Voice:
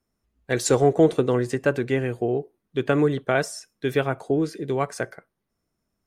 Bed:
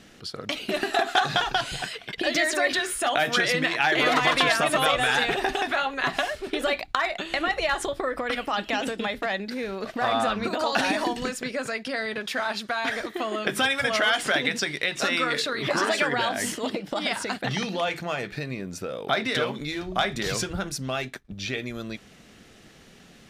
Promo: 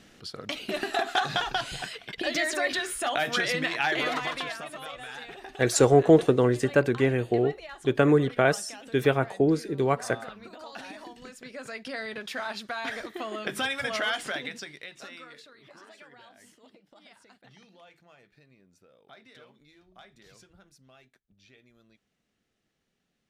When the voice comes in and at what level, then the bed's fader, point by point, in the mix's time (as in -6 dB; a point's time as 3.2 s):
5.10 s, 0.0 dB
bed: 3.89 s -4 dB
4.76 s -18 dB
11.14 s -18 dB
11.87 s -6 dB
14.1 s -6 dB
15.67 s -27.5 dB